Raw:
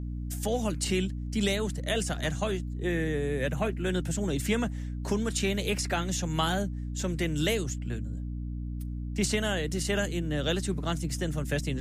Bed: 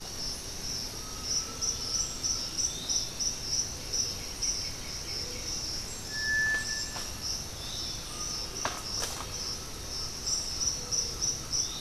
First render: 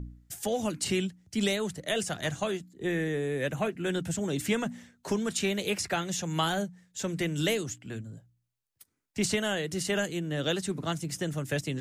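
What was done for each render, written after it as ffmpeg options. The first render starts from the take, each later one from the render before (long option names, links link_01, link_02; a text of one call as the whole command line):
ffmpeg -i in.wav -af "bandreject=frequency=60:width_type=h:width=4,bandreject=frequency=120:width_type=h:width=4,bandreject=frequency=180:width_type=h:width=4,bandreject=frequency=240:width_type=h:width=4,bandreject=frequency=300:width_type=h:width=4" out.wav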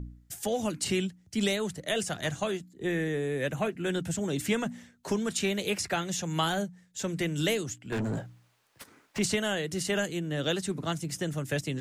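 ffmpeg -i in.wav -filter_complex "[0:a]asettb=1/sr,asplit=3[link_01][link_02][link_03];[link_01]atrim=end=7.924[link_04];[link_02]atrim=start=7.92:end=9.19,asetpts=PTS-STARTPTS,afade=type=in:duration=0.004:curve=qsin,afade=type=out:start_time=1.266:duration=0.004:curve=qsin,asplit=2[link_05][link_06];[link_06]highpass=frequency=720:poles=1,volume=38dB,asoftclip=type=tanh:threshold=-22dB[link_07];[link_05][link_07]amix=inputs=2:normalize=0,lowpass=frequency=1300:poles=1,volume=-6dB[link_08];[link_03]atrim=start=9.186[link_09];[link_04][link_08]acrossfade=duration=0.004:curve1=hsin:curve2=qsin[link_10];[link_10][link_09]acrossfade=duration=0.004:curve1=qsin:curve2=hsin" out.wav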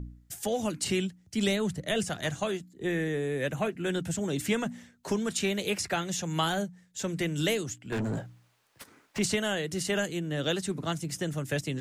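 ffmpeg -i in.wav -filter_complex "[0:a]asettb=1/sr,asplit=3[link_01][link_02][link_03];[link_01]atrim=end=1.474[link_04];[link_02]atrim=start=1.47:end=2.1,asetpts=PTS-STARTPTS,afade=type=in:duration=0.004:curve=qsin,afade=type=out:start_time=0.626:duration=0.004:curve=qsin,bass=frequency=250:gain=7,treble=frequency=4000:gain=-2[link_05];[link_03]atrim=start=2.096[link_06];[link_04][link_05]acrossfade=duration=0.004:curve1=hsin:curve2=qsin[link_07];[link_07][link_06]acrossfade=duration=0.004:curve1=qsin:curve2=hsin" out.wav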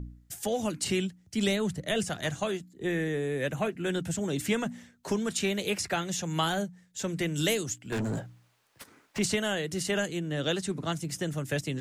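ffmpeg -i in.wav -filter_complex "[0:a]asettb=1/sr,asplit=3[link_01][link_02][link_03];[link_01]atrim=end=7.344[link_04];[link_02]atrim=start=7.34:end=8.2,asetpts=PTS-STARTPTS,afade=type=in:duration=0.004:curve=qsin,afade=type=out:start_time=0.856:duration=0.004:curve=qsin,bass=frequency=250:gain=0,treble=frequency=4000:gain=5[link_05];[link_03]atrim=start=8.196[link_06];[link_04][link_05]acrossfade=duration=0.004:curve1=hsin:curve2=qsin[link_07];[link_07][link_06]acrossfade=duration=0.004:curve1=qsin:curve2=hsin,asettb=1/sr,asplit=3[link_08][link_09][link_10];[link_08]atrim=end=9.914[link_11];[link_09]atrim=start=9.91:end=10.94,asetpts=PTS-STARTPTS,afade=type=in:duration=0.004:curve=qsin,afade=type=out:start_time=1.026:duration=0.004:curve=qsin,lowpass=12000[link_12];[link_10]atrim=start=10.936[link_13];[link_11][link_12]acrossfade=duration=0.004:curve1=hsin:curve2=qsin[link_14];[link_14][link_13]acrossfade=duration=0.004:curve1=qsin:curve2=hsin" out.wav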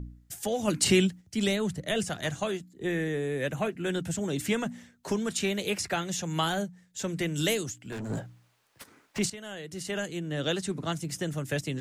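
ffmpeg -i in.wav -filter_complex "[0:a]asplit=3[link_01][link_02][link_03];[link_01]afade=type=out:start_time=0.67:duration=0.02[link_04];[link_02]acontrast=73,afade=type=in:start_time=0.67:duration=0.02,afade=type=out:start_time=1.2:duration=0.02[link_05];[link_03]afade=type=in:start_time=1.2:duration=0.02[link_06];[link_04][link_05][link_06]amix=inputs=3:normalize=0,asplit=3[link_07][link_08][link_09];[link_07]afade=type=out:start_time=7.69:duration=0.02[link_10];[link_08]acompressor=threshold=-34dB:ratio=6:attack=3.2:release=140:knee=1:detection=peak,afade=type=in:start_time=7.69:duration=0.02,afade=type=out:start_time=8.09:duration=0.02[link_11];[link_09]afade=type=in:start_time=8.09:duration=0.02[link_12];[link_10][link_11][link_12]amix=inputs=3:normalize=0,asplit=2[link_13][link_14];[link_13]atrim=end=9.3,asetpts=PTS-STARTPTS,afade=type=out:start_time=9.296:duration=0.004:curve=hsin:silence=0.141254[link_15];[link_14]atrim=start=9.3,asetpts=PTS-STARTPTS,afade=type=in:duration=1.12:silence=0.141254[link_16];[link_15][link_16]concat=n=2:v=0:a=1" out.wav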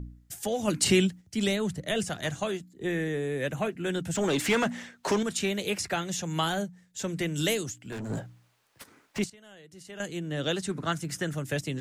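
ffmpeg -i in.wav -filter_complex "[0:a]asettb=1/sr,asplit=3[link_01][link_02][link_03];[link_01]atrim=end=4.154[link_04];[link_02]atrim=start=4.15:end=5.23,asetpts=PTS-STARTPTS,afade=type=in:duration=0.004:curve=qsin,afade=type=out:start_time=1.076:duration=0.004:curve=qsin,asplit=2[link_05][link_06];[link_06]highpass=frequency=720:poles=1,volume=20dB,asoftclip=type=tanh:threshold=-16dB[link_07];[link_05][link_07]amix=inputs=2:normalize=0,lowpass=frequency=3300:poles=1,volume=-6dB[link_08];[link_03]atrim=start=5.226[link_09];[link_04][link_08]acrossfade=duration=0.004:curve1=hsin:curve2=qsin[link_10];[link_10][link_09]acrossfade=duration=0.004:curve1=qsin:curve2=hsin,asettb=1/sr,asplit=3[link_11][link_12][link_13];[link_11]atrim=end=10.694[link_14];[link_12]atrim=start=10.69:end=11.35,asetpts=PTS-STARTPTS,afade=type=in:duration=0.004:curve=qsin,afade=type=out:start_time=0.656:duration=0.004:curve=qsin,equalizer=frequency=1500:width=1.8:gain=8[link_15];[link_13]atrim=start=11.346[link_16];[link_14][link_15]acrossfade=duration=0.004:curve1=hsin:curve2=qsin[link_17];[link_17][link_16]acrossfade=duration=0.004:curve1=qsin:curve2=hsin,asplit=3[link_18][link_19][link_20];[link_18]atrim=end=9.242[link_21];[link_19]atrim=start=9.238:end=10.002,asetpts=PTS-STARTPTS,volume=-11dB[link_22];[link_20]atrim=start=9.998[link_23];[link_21][link_22]acrossfade=duration=0.004:curve1=hsin:curve2=hsin[link_24];[link_24][link_23]acrossfade=duration=0.004:curve1=hsin:curve2=hsin" out.wav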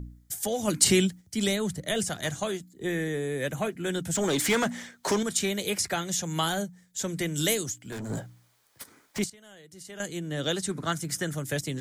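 ffmpeg -i in.wav -af "highshelf=frequency=5900:gain=9,bandreject=frequency=2700:width=10" out.wav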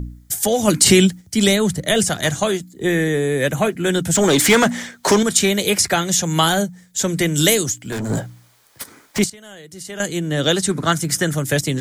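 ffmpeg -i in.wav -af "alimiter=level_in=11.5dB:limit=-1dB:release=50:level=0:latency=1" out.wav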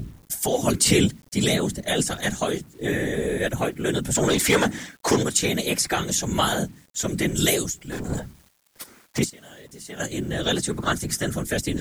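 ffmpeg -i in.wav -af "afftfilt=real='hypot(re,im)*cos(2*PI*random(0))':imag='hypot(re,im)*sin(2*PI*random(1))':win_size=512:overlap=0.75,acrusher=bits=8:mix=0:aa=0.000001" out.wav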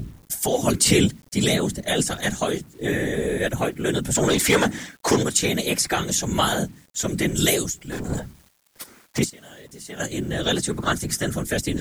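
ffmpeg -i in.wav -af "volume=1dB" out.wav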